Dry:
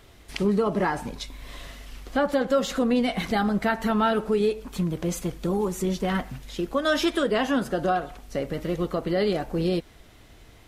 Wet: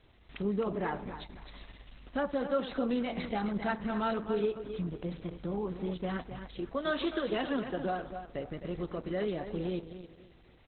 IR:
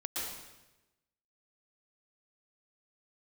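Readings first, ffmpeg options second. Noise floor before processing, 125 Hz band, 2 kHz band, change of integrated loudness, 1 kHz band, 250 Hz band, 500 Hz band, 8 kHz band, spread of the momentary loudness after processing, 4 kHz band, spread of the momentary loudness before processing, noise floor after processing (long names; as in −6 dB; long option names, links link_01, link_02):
−51 dBFS, −9.0 dB, −9.5 dB, −9.0 dB, −9.5 dB, −9.0 dB, −8.5 dB, below −40 dB, 14 LU, −11.0 dB, 11 LU, −59 dBFS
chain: -af "aecho=1:1:263|526|789:0.355|0.0958|0.0259,volume=-8.5dB" -ar 48000 -c:a libopus -b:a 8k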